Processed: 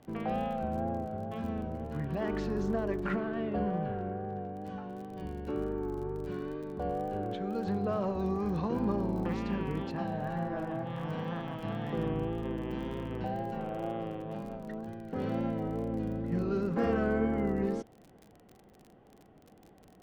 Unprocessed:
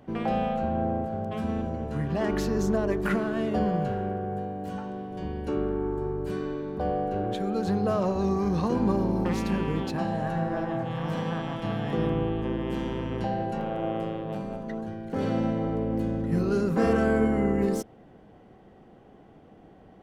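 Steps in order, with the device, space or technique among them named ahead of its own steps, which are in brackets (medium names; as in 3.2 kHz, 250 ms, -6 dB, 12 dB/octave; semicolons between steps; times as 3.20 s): lo-fi chain (low-pass 3.8 kHz 12 dB/octave; wow and flutter; crackle 40 per s -37 dBFS); 3.15–4.52 s: low-pass 3.9 kHz -> 2.6 kHz 12 dB/octave; trim -6 dB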